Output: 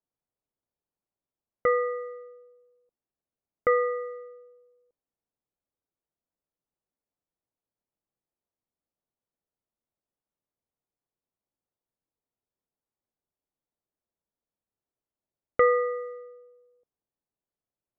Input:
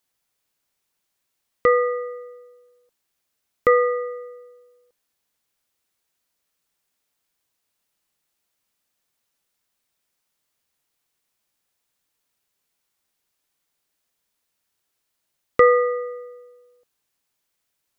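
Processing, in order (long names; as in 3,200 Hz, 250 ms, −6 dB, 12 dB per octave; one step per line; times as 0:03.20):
low-pass that shuts in the quiet parts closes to 720 Hz, open at −20.5 dBFS
level −6.5 dB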